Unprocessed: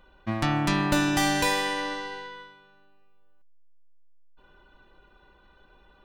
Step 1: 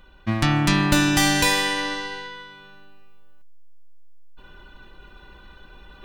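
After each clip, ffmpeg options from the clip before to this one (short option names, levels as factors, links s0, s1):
-af "areverse,acompressor=mode=upward:threshold=0.00708:ratio=2.5,areverse,equalizer=f=640:w=0.57:g=-7,volume=2.51"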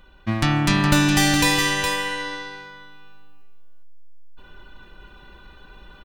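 -af "aecho=1:1:415:0.473"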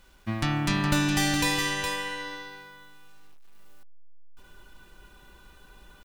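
-af "acrusher=bits=8:mix=0:aa=0.000001,volume=0.447"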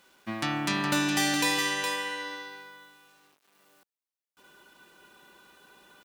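-af "highpass=240"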